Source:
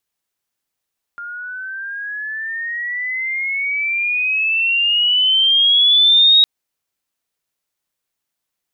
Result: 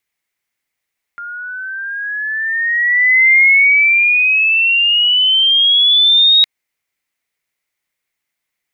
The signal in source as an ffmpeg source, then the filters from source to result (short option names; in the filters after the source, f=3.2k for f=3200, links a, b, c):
-f lavfi -i "aevalsrc='pow(10,(-27+20*t/5.26)/20)*sin(2*PI*1400*5.26/log(3800/1400)*(exp(log(3800/1400)*t/5.26)-1))':d=5.26:s=44100"
-af "equalizer=f=2.1k:t=o:w=0.48:g=13"